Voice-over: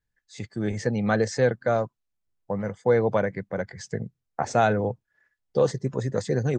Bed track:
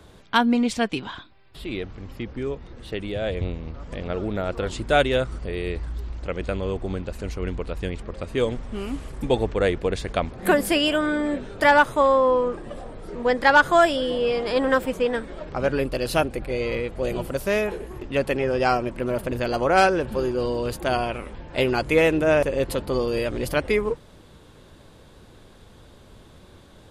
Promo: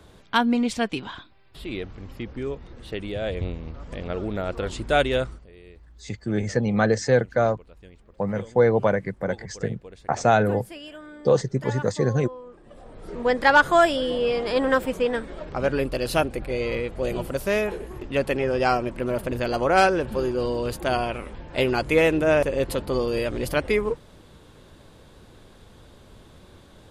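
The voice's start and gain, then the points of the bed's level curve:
5.70 s, +2.5 dB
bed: 0:05.26 −1.5 dB
0:05.47 −19.5 dB
0:12.45 −19.5 dB
0:13.11 −0.5 dB

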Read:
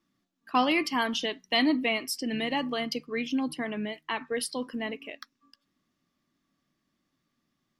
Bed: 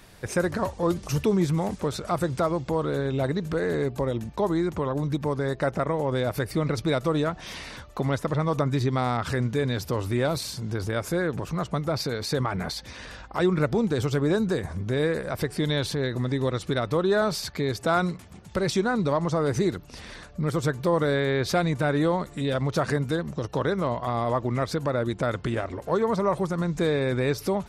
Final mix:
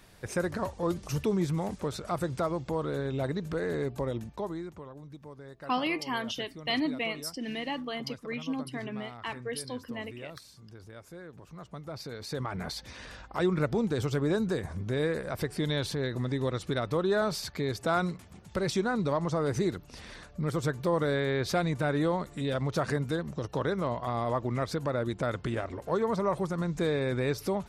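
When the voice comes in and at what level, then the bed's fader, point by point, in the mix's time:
5.15 s, −5.0 dB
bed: 0:04.19 −5.5 dB
0:04.97 −20 dB
0:11.32 −20 dB
0:12.76 −4.5 dB

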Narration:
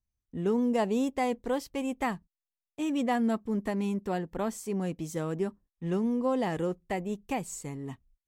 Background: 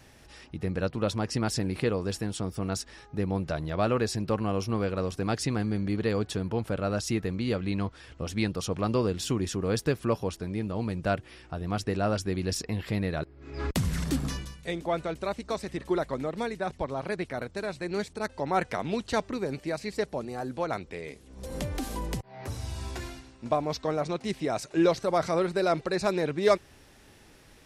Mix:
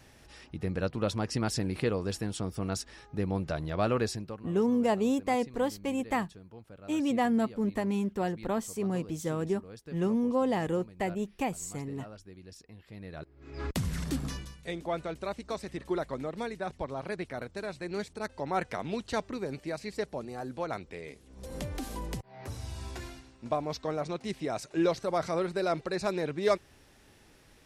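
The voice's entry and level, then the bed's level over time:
4.10 s, +0.5 dB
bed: 0:04.08 −2 dB
0:04.48 −20 dB
0:12.86 −20 dB
0:13.43 −4 dB

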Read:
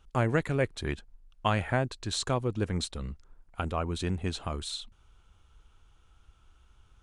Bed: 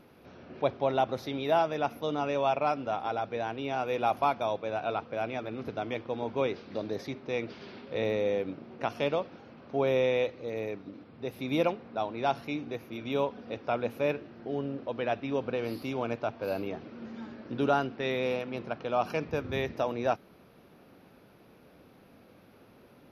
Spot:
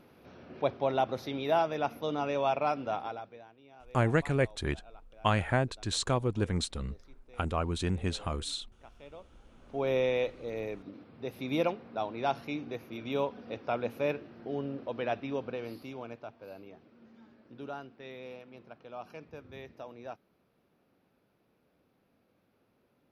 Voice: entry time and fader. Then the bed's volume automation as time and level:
3.80 s, 0.0 dB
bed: 0:02.98 −1.5 dB
0:03.54 −23.5 dB
0:08.98 −23.5 dB
0:09.92 −2 dB
0:15.17 −2 dB
0:16.54 −15 dB

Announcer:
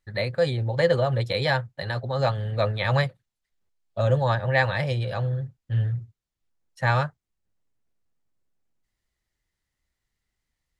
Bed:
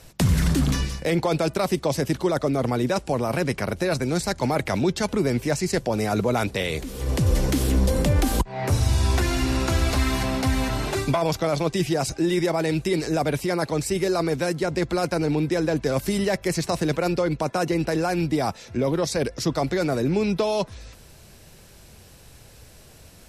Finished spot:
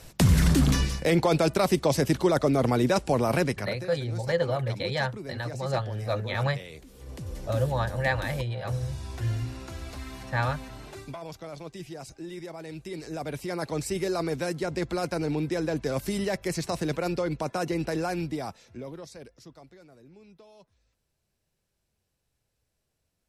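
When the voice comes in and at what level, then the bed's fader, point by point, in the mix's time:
3.50 s, −5.0 dB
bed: 0:03.40 0 dB
0:03.92 −17 dB
0:12.63 −17 dB
0:13.77 −5.5 dB
0:18.09 −5.5 dB
0:19.88 −30.5 dB

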